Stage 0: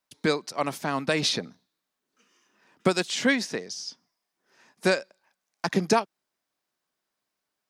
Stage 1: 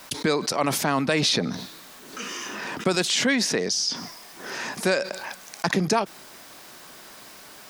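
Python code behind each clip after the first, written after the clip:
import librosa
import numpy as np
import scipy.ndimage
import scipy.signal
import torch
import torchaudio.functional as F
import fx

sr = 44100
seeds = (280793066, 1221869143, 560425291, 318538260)

y = fx.env_flatten(x, sr, amount_pct=70)
y = y * 10.0 ** (-2.0 / 20.0)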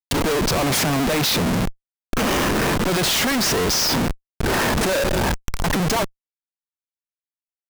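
y = fx.schmitt(x, sr, flips_db=-31.5)
y = y * 10.0 ** (7.5 / 20.0)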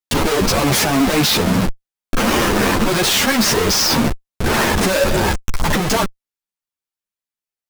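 y = fx.ensemble(x, sr)
y = y * 10.0 ** (7.0 / 20.0)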